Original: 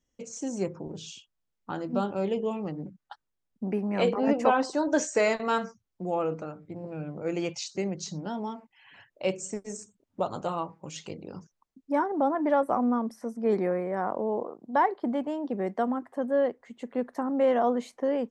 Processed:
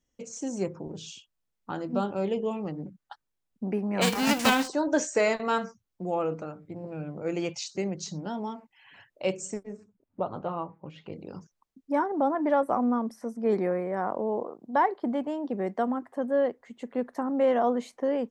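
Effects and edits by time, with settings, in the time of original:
4.01–4.67 spectral whitening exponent 0.3
9.63–11.13 air absorption 450 m

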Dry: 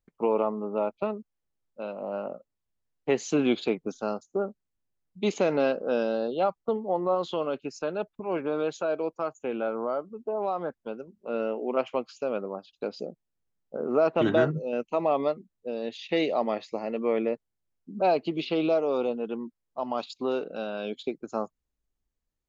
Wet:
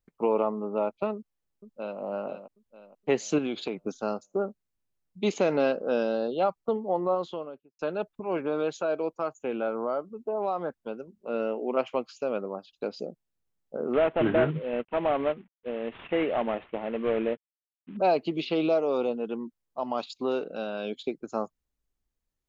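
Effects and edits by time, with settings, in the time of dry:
1.15–2 echo throw 0.47 s, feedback 40%, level -8 dB
3.38–3.8 compressor 10:1, threshold -26 dBFS
6.99–7.79 studio fade out
13.93–17.97 CVSD 16 kbps

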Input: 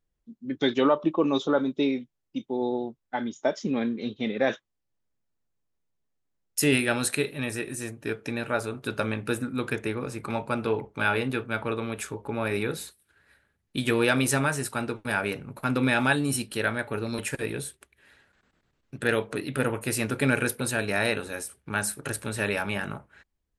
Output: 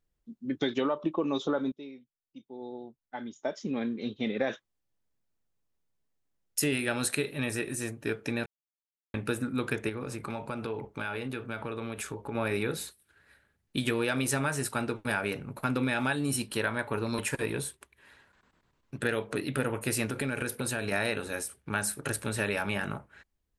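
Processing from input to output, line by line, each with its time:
1.72–4.49 fade in quadratic, from -19.5 dB
8.46–9.14 mute
9.89–12.35 compressor 4:1, threshold -32 dBFS
16.41–19.01 bell 1000 Hz +8.5 dB 0.3 oct
20.09–20.92 compressor, threshold -27 dBFS
whole clip: compressor, threshold -25 dBFS

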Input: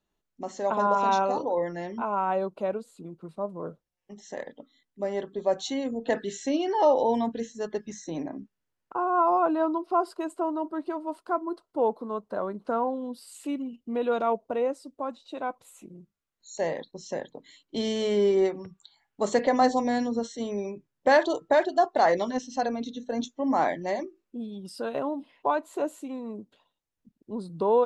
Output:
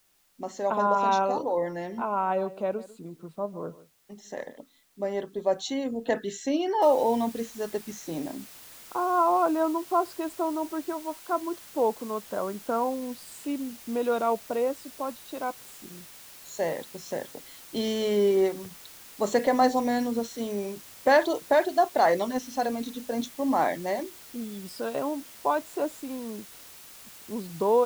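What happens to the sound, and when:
1.32–4.58 echo 0.148 s -17.5 dB
6.82 noise floor step -67 dB -48 dB
10.93–11.33 bell 140 Hz -9.5 dB 1.4 oct

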